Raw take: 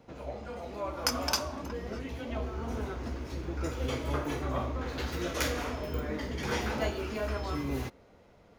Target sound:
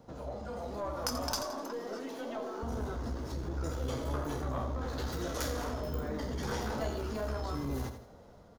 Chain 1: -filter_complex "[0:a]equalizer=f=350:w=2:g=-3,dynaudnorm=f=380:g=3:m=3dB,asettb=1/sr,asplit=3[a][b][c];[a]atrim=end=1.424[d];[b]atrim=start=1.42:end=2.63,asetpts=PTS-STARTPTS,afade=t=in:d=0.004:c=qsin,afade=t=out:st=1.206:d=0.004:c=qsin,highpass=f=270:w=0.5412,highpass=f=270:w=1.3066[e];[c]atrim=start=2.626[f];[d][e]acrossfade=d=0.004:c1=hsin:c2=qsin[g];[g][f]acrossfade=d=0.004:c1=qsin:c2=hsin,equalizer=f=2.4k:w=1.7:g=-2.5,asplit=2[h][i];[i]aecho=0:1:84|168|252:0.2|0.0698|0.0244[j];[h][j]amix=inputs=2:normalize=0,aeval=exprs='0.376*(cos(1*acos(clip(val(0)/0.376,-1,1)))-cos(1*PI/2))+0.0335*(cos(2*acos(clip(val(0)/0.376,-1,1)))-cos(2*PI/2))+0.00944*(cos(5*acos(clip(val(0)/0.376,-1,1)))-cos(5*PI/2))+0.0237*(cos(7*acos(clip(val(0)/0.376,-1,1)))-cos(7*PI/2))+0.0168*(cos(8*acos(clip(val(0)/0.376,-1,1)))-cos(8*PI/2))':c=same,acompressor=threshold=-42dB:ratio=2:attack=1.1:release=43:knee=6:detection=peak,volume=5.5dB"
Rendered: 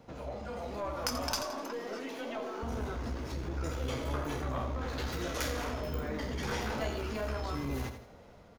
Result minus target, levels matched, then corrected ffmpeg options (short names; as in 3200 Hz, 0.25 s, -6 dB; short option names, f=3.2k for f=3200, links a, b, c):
2000 Hz band +4.0 dB
-filter_complex "[0:a]equalizer=f=350:w=2:g=-3,dynaudnorm=f=380:g=3:m=3dB,asettb=1/sr,asplit=3[a][b][c];[a]atrim=end=1.424[d];[b]atrim=start=1.42:end=2.63,asetpts=PTS-STARTPTS,afade=t=in:d=0.004:c=qsin,afade=t=out:st=1.206:d=0.004:c=qsin,highpass=f=270:w=0.5412,highpass=f=270:w=1.3066[e];[c]atrim=start=2.626[f];[d][e]acrossfade=d=0.004:c1=hsin:c2=qsin[g];[g][f]acrossfade=d=0.004:c1=qsin:c2=hsin,equalizer=f=2.4k:w=1.7:g=-12.5,asplit=2[h][i];[i]aecho=0:1:84|168|252:0.2|0.0698|0.0244[j];[h][j]amix=inputs=2:normalize=0,aeval=exprs='0.376*(cos(1*acos(clip(val(0)/0.376,-1,1)))-cos(1*PI/2))+0.0335*(cos(2*acos(clip(val(0)/0.376,-1,1)))-cos(2*PI/2))+0.00944*(cos(5*acos(clip(val(0)/0.376,-1,1)))-cos(5*PI/2))+0.0237*(cos(7*acos(clip(val(0)/0.376,-1,1)))-cos(7*PI/2))+0.0168*(cos(8*acos(clip(val(0)/0.376,-1,1)))-cos(8*PI/2))':c=same,acompressor=threshold=-42dB:ratio=2:attack=1.1:release=43:knee=6:detection=peak,volume=5.5dB"